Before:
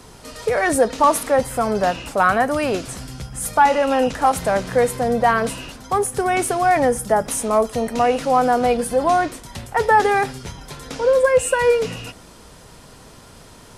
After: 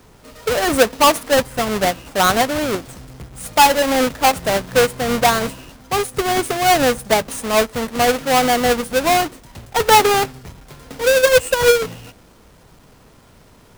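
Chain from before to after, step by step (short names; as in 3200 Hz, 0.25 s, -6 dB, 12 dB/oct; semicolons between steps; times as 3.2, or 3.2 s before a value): half-waves squared off; upward expander 1.5:1, over -26 dBFS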